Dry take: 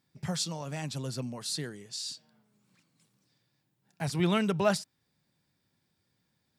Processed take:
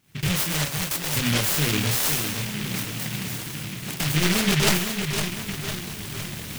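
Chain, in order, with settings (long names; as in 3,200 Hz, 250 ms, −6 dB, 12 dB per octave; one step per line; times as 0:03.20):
camcorder AGC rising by 59 dB per second
0:00.65–0:01.16: high-pass filter 900 Hz 12 dB per octave
in parallel at +0.5 dB: downward compressor, threshold −41 dBFS, peak gain reduction 19.5 dB
on the sum: wave folding −21.5 dBFS
multi-voice chorus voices 6, 0.89 Hz, delay 27 ms, depth 1.8 ms
on a send: echo with a time of its own for lows and highs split 2,800 Hz, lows 507 ms, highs 130 ms, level −6.5 dB
on the sum: short delay modulated by noise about 2,400 Hz, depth 0.4 ms
level +8 dB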